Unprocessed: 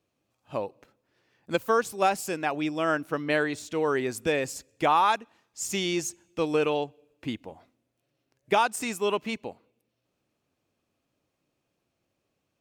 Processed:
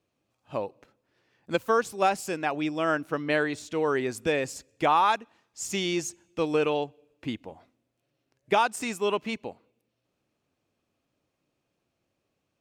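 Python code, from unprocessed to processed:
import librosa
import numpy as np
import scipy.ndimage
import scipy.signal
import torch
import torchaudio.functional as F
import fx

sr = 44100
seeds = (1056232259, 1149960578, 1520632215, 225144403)

y = fx.high_shelf(x, sr, hz=12000.0, db=-9.5)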